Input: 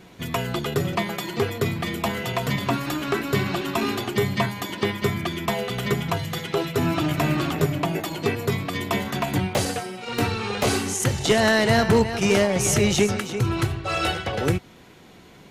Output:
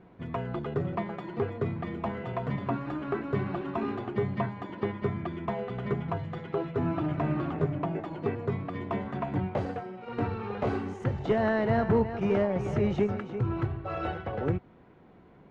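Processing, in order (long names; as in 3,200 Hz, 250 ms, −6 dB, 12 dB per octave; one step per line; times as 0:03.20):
low-pass filter 1,300 Hz 12 dB per octave
level −6 dB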